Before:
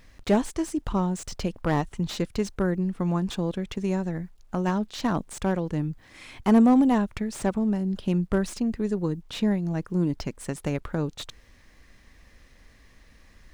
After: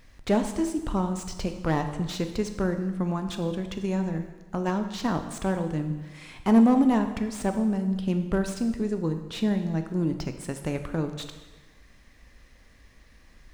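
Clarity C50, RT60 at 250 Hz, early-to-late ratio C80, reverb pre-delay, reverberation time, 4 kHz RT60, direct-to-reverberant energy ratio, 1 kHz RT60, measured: 8.5 dB, 1.2 s, 10.5 dB, 8 ms, 1.2 s, 1.1 s, 7.0 dB, 1.2 s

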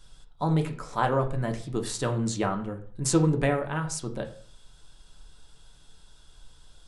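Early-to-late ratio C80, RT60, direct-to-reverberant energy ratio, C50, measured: 16.0 dB, 0.45 s, 4.0 dB, 12.0 dB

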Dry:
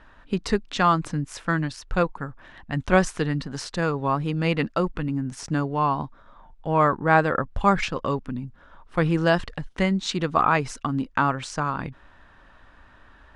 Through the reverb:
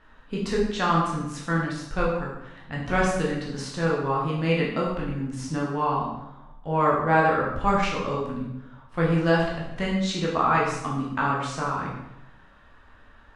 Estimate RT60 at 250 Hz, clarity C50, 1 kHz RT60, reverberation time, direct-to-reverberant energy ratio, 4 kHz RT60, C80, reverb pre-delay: 1.0 s, 2.5 dB, 0.85 s, 0.90 s, -4.5 dB, 0.75 s, 5.5 dB, 11 ms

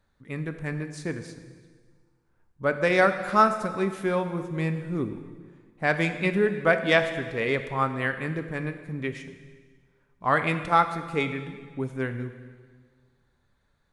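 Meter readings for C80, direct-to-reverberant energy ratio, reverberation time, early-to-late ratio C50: 11.0 dB, 7.5 dB, 1.7 s, 10.0 dB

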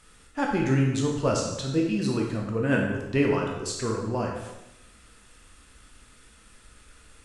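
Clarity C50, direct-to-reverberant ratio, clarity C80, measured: 3.0 dB, -1.0 dB, 5.5 dB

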